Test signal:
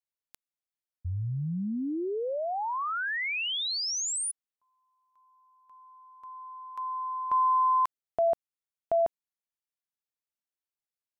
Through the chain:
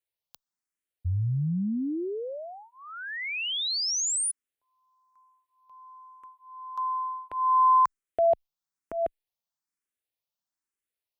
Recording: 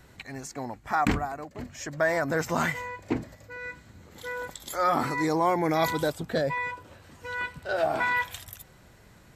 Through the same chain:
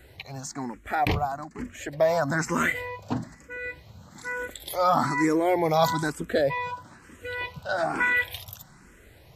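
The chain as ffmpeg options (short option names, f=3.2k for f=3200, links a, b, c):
-filter_complex "[0:a]asplit=2[a][b];[b]afreqshift=1.1[c];[a][c]amix=inputs=2:normalize=1,volume=5dB"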